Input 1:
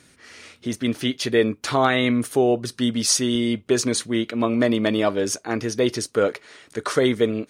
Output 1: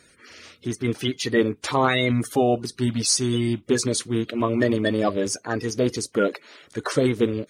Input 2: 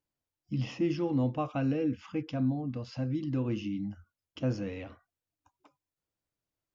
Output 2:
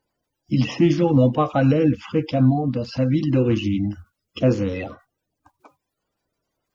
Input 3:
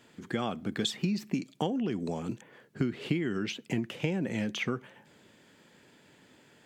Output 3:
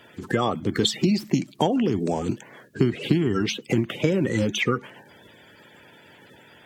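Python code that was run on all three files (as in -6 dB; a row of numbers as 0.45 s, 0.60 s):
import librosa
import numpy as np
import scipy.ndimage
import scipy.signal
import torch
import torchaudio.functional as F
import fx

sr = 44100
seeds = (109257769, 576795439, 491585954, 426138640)

y = fx.spec_quant(x, sr, step_db=30)
y = librosa.util.normalize(y) * 10.0 ** (-6 / 20.0)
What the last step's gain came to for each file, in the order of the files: -0.5 dB, +13.0 dB, +9.5 dB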